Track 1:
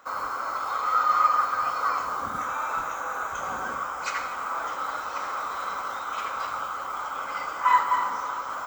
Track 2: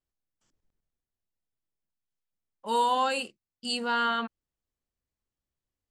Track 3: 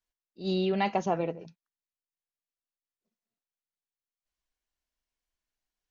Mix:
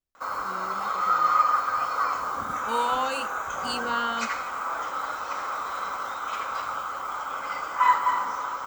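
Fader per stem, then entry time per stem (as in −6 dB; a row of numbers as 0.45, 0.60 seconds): 0.0, −2.0, −17.0 decibels; 0.15, 0.00, 0.00 seconds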